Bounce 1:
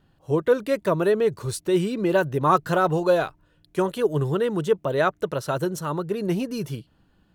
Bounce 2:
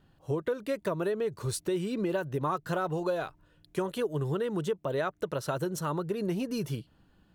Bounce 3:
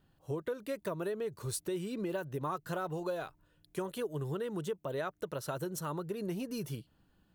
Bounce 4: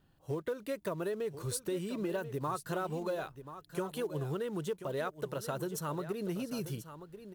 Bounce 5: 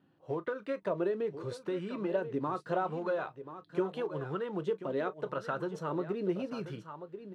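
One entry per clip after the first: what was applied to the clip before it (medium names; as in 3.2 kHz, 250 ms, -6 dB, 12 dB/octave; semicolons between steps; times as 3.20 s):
compression 6:1, threshold -26 dBFS, peak gain reduction 12.5 dB; trim -1.5 dB
treble shelf 10 kHz +10 dB; trim -6 dB
in parallel at -7.5 dB: short-mantissa float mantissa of 2-bit; on the sum: delay 1035 ms -12 dB; trim -2.5 dB
band-pass 160–3000 Hz; reverberation, pre-delay 3 ms, DRR 10.5 dB; sweeping bell 0.82 Hz 260–1500 Hz +8 dB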